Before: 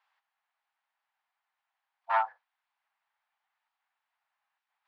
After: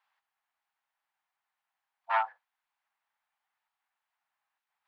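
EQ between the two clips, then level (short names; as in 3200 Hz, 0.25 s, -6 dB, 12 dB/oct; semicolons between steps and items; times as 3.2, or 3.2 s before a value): dynamic EQ 2700 Hz, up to +6 dB, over -44 dBFS, Q 1.1; -2.0 dB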